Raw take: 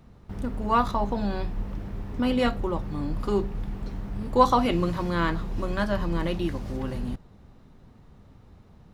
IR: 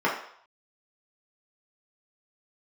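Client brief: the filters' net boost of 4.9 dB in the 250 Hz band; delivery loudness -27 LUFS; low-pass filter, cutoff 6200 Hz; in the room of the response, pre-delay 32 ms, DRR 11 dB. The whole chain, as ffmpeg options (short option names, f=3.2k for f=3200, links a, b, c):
-filter_complex "[0:a]lowpass=6.2k,equalizer=f=250:t=o:g=6,asplit=2[a][b];[1:a]atrim=start_sample=2205,adelay=32[c];[b][c]afir=irnorm=-1:irlink=0,volume=-26.5dB[d];[a][d]amix=inputs=2:normalize=0,volume=-2dB"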